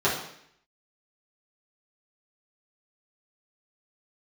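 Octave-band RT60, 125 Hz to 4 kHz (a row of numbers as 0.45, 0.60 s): 0.70, 0.75, 0.70, 0.65, 0.75, 0.70 s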